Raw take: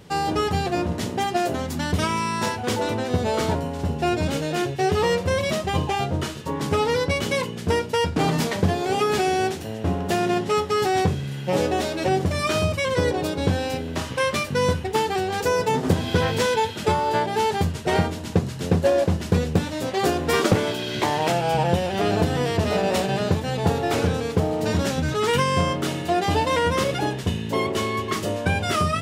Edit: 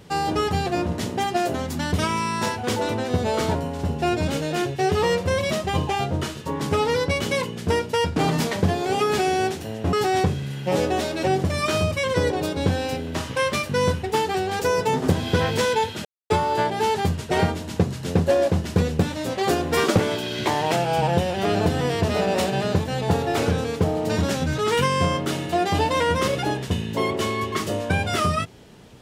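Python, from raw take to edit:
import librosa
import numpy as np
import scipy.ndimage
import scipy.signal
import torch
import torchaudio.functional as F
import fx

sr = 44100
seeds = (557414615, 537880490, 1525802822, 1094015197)

y = fx.edit(x, sr, fx.cut(start_s=9.93, length_s=0.81),
    fx.insert_silence(at_s=16.86, length_s=0.25), tone=tone)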